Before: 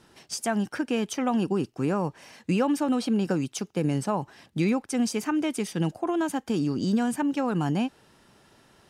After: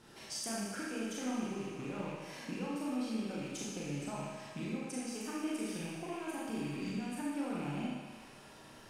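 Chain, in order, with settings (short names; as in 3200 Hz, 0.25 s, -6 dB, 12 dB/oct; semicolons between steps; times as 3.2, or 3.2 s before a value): rattling part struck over -40 dBFS, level -26 dBFS; compressor 16:1, threshold -38 dBFS, peak gain reduction 19 dB; on a send: thinning echo 76 ms, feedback 84%, high-pass 220 Hz, level -11 dB; on the sum: Schroeder reverb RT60 1 s, combs from 28 ms, DRR -5 dB; gain -4 dB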